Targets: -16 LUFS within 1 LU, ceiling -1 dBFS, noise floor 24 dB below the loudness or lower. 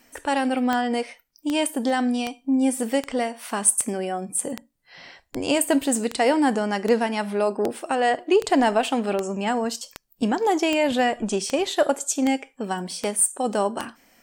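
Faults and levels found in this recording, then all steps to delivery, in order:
clicks 18; loudness -23.5 LUFS; peak -4.5 dBFS; loudness target -16.0 LUFS
-> de-click; gain +7.5 dB; limiter -1 dBFS

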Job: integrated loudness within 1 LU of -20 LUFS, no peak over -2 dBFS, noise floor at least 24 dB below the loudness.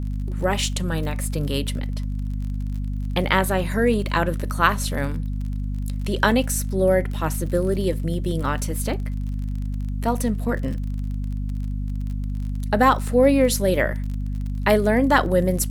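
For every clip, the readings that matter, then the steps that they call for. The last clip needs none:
ticks 32/s; hum 50 Hz; harmonics up to 250 Hz; hum level -24 dBFS; loudness -23.0 LUFS; peak -3.0 dBFS; loudness target -20.0 LUFS
-> de-click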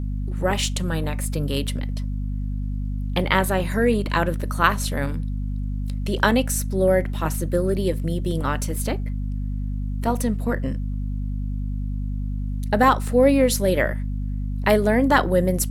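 ticks 0.76/s; hum 50 Hz; harmonics up to 250 Hz; hum level -24 dBFS
-> de-hum 50 Hz, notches 5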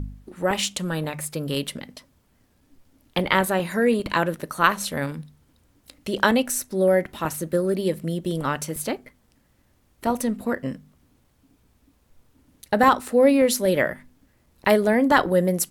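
hum none; loudness -23.0 LUFS; peak -3.0 dBFS; loudness target -20.0 LUFS
-> gain +3 dB; limiter -2 dBFS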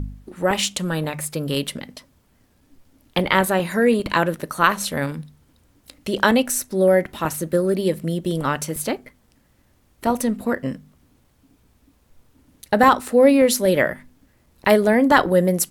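loudness -20.0 LUFS; peak -2.0 dBFS; noise floor -60 dBFS

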